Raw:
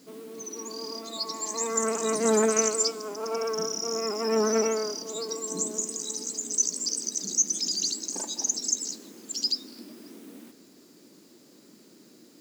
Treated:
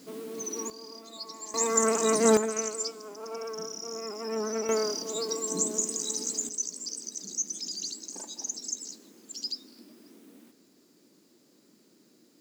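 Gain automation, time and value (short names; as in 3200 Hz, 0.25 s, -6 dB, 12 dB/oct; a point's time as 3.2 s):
+3 dB
from 0.7 s -8.5 dB
from 1.54 s +2.5 dB
from 2.37 s -7.5 dB
from 4.69 s +1.5 dB
from 6.49 s -7.5 dB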